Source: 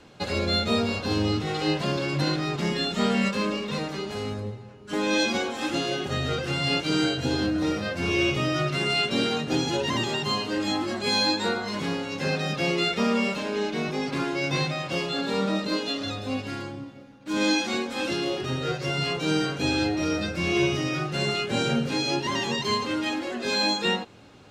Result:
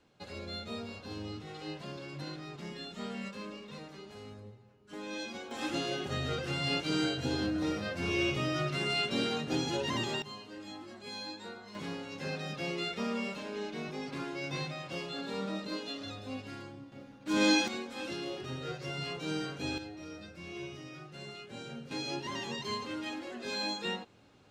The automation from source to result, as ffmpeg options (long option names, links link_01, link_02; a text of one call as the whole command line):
ffmpeg -i in.wav -af "asetnsamples=nb_out_samples=441:pad=0,asendcmd='5.51 volume volume -7dB;10.22 volume volume -19dB;11.75 volume volume -11dB;16.92 volume volume -2.5dB;17.68 volume volume -11dB;19.78 volume volume -19.5dB;21.91 volume volume -11dB',volume=-16.5dB" out.wav